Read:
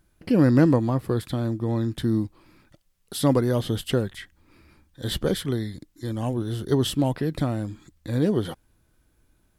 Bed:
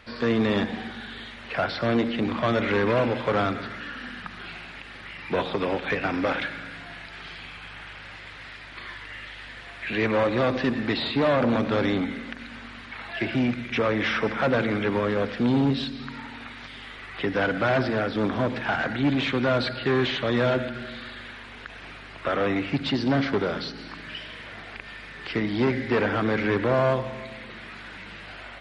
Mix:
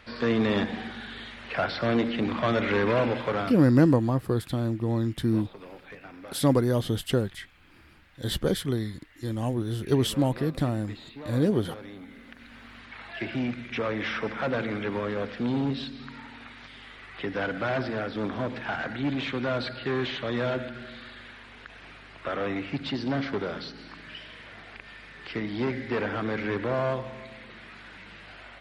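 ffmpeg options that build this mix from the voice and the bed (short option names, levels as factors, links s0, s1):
-filter_complex "[0:a]adelay=3200,volume=0.841[s0];[1:a]volume=3.98,afade=t=out:st=3.15:d=0.58:silence=0.133352,afade=t=in:st=11.99:d=0.82:silence=0.211349[s1];[s0][s1]amix=inputs=2:normalize=0"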